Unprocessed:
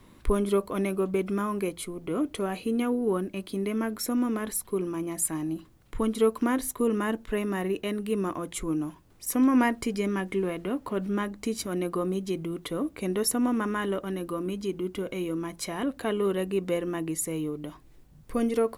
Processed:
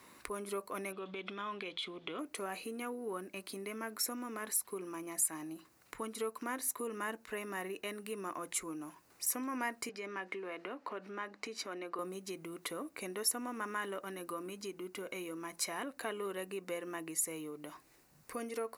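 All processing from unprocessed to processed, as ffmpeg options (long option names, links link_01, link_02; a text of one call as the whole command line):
ffmpeg -i in.wav -filter_complex "[0:a]asettb=1/sr,asplit=3[link_01][link_02][link_03];[link_01]atrim=end=0.924[link_04];[link_02]atrim=start=0.92:end=2.19,asetpts=PTS-STARTPTS,afade=type=in:duration=0.004:curve=qsin,afade=type=out:start_time=1.266:duration=0.004:curve=qsin,lowpass=frequency=3400:width_type=q:width=15,acompressor=threshold=-29dB:ratio=6:attack=3.2:release=140:knee=1:detection=peak[link_05];[link_03]atrim=start=2.186[link_06];[link_04][link_05]acrossfade=duration=0.004:curve1=hsin:curve2=qsin[link_07];[link_07][link_06]acrossfade=duration=0.004:curve1=qsin:curve2=hsin,asettb=1/sr,asplit=3[link_08][link_09][link_10];[link_08]atrim=end=9.894[link_11];[link_09]atrim=start=9.89:end=11.99,asetpts=PTS-STARTPTS,afade=type=in:duration=0.004:curve=qsin,afade=type=out:start_time=2.096:duration=0.004:curve=qsin,acrossover=split=230 5200:gain=0.224 1 0.112[link_12][link_13][link_14];[link_12][link_13][link_14]amix=inputs=3:normalize=0,acompressor=threshold=-34dB:ratio=1.5:attack=3.2:release=140:knee=1:detection=peak[link_15];[link_10]atrim=start=11.986[link_16];[link_11][link_15]acrossfade=duration=0.004:curve1=hsin:curve2=qsin[link_17];[link_17][link_16]acrossfade=duration=0.004:curve1=qsin:curve2=hsin,equalizer=frequency=3300:width=4.8:gain=-10,acompressor=threshold=-40dB:ratio=2,highpass=frequency=1100:poles=1,volume=4.5dB" out.wav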